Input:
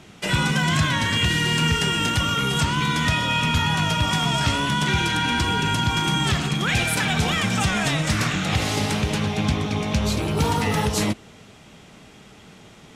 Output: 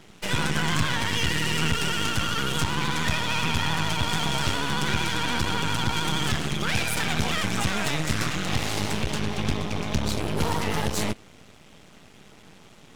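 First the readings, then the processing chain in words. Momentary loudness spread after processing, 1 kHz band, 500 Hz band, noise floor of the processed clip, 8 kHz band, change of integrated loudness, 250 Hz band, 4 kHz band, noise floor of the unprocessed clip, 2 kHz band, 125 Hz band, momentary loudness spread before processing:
3 LU, -4.5 dB, -3.5 dB, -51 dBFS, -3.0 dB, -4.5 dB, -5.5 dB, -4.0 dB, -47 dBFS, -4.0 dB, -6.0 dB, 3 LU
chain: half-wave rectifier; vibrato 13 Hz 55 cents

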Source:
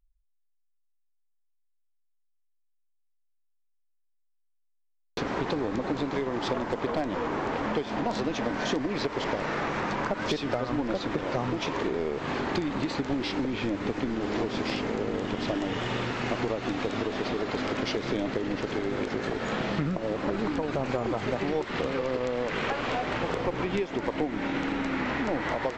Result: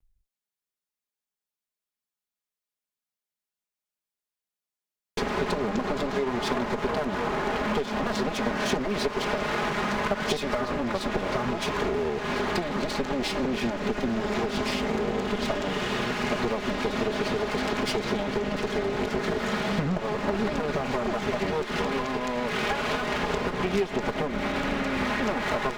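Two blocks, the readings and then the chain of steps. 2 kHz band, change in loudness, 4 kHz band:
+3.5 dB, +2.0 dB, +3.5 dB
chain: comb filter that takes the minimum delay 4.8 ms; trim +4 dB

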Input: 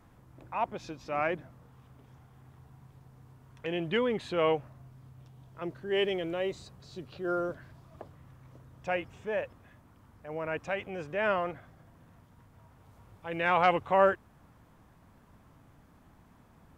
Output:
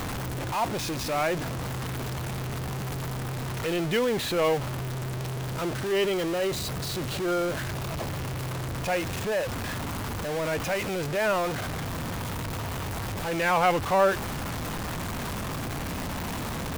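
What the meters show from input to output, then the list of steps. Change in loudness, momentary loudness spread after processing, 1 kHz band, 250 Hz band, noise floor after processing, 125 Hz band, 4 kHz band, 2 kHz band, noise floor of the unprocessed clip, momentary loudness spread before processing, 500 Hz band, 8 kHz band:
+2.5 dB, 8 LU, +3.5 dB, +7.5 dB, -32 dBFS, +14.5 dB, +9.0 dB, +5.0 dB, -60 dBFS, 21 LU, +4.0 dB, no reading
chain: jump at every zero crossing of -26.5 dBFS

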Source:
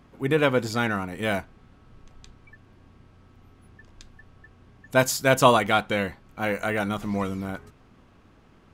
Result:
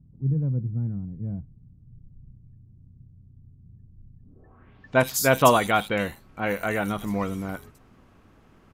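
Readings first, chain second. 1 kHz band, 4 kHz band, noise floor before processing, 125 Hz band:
-0.5 dB, -3.0 dB, -56 dBFS, +3.5 dB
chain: low-pass sweep 140 Hz -> 14 kHz, 4.19–4.99 s; bands offset in time lows, highs 80 ms, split 3.8 kHz

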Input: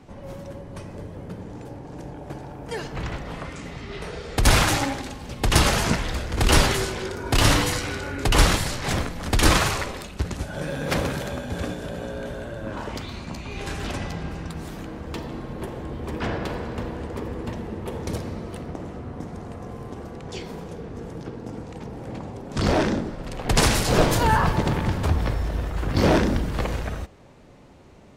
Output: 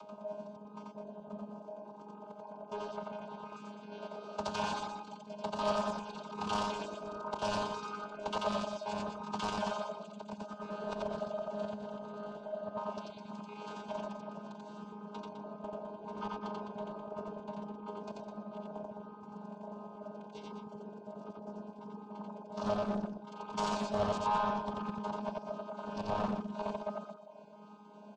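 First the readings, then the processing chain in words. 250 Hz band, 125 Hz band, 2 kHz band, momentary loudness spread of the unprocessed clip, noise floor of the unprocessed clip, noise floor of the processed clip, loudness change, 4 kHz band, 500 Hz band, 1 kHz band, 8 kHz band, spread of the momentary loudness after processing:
-13.0 dB, -23.0 dB, -19.5 dB, 18 LU, -40 dBFS, -52 dBFS, -15.0 dB, -19.0 dB, -10.0 dB, -9.0 dB, -24.5 dB, 13 LU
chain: vocoder on a held chord bare fifth, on G#3; reverb removal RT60 0.72 s; high-pass 550 Hz 6 dB/octave; treble shelf 2.3 kHz -5.5 dB; upward compressor, threshold -43 dBFS; saturation -27.5 dBFS, distortion -9 dB; trance gate "xx.xxx.xx" 188 bpm -12 dB; distance through air 64 m; static phaser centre 770 Hz, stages 4; loudspeakers at several distances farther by 30 m -1 dB, 71 m -8 dB; loudspeaker Doppler distortion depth 0.21 ms; trim +3.5 dB

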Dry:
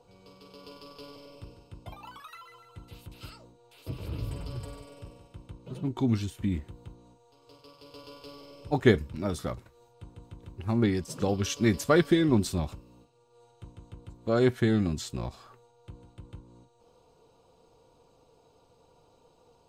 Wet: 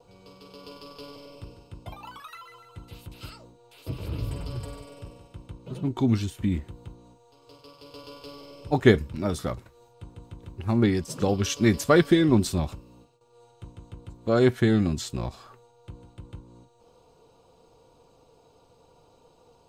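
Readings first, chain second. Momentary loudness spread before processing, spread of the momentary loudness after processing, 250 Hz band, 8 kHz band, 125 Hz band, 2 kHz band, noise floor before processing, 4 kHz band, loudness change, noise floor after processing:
24 LU, 24 LU, +3.5 dB, +3.5 dB, +3.5 dB, +3.5 dB, -63 dBFS, +3.5 dB, +3.5 dB, -60 dBFS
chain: gate with hold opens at -56 dBFS; trim +3.5 dB

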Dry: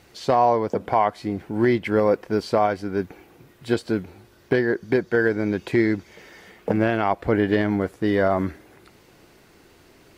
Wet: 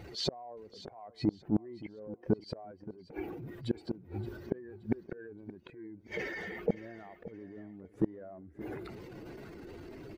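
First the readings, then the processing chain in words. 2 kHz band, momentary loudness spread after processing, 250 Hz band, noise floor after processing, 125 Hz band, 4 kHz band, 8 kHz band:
-18.0 dB, 14 LU, -13.0 dB, -60 dBFS, -12.5 dB, -5.5 dB, no reading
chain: spectral contrast enhancement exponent 1.8; dynamic bell 1 kHz, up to -6 dB, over -37 dBFS, Q 1.6; transient shaper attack -9 dB, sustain +5 dB; inverted gate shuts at -22 dBFS, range -32 dB; feedback delay 573 ms, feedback 26%, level -16 dB; trim +6 dB

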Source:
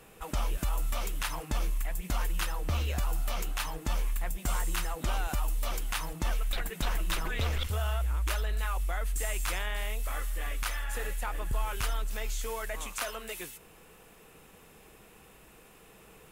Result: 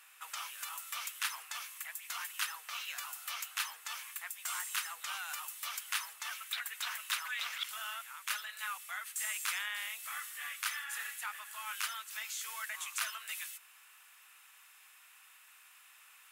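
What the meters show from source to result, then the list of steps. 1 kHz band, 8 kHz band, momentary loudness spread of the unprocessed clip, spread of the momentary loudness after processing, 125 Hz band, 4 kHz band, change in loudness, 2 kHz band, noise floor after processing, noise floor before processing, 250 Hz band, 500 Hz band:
-5.5 dB, 0.0 dB, 4 LU, 21 LU, under -40 dB, 0.0 dB, -4.5 dB, -0.5 dB, -60 dBFS, -56 dBFS, under -40 dB, -24.5 dB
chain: high-pass 1.2 kHz 24 dB/octave

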